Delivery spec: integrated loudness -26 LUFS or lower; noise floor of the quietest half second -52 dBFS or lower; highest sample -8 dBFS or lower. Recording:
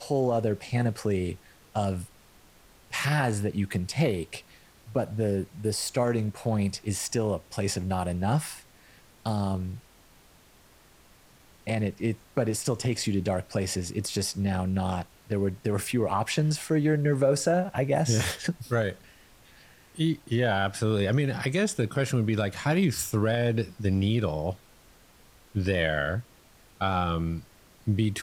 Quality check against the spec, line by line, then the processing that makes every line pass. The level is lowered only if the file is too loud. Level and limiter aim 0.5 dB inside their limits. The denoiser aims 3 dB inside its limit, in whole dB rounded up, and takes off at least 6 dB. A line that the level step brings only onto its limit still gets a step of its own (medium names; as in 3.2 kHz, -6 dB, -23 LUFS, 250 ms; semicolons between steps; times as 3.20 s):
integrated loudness -28.0 LUFS: pass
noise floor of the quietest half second -57 dBFS: pass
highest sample -12.0 dBFS: pass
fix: none needed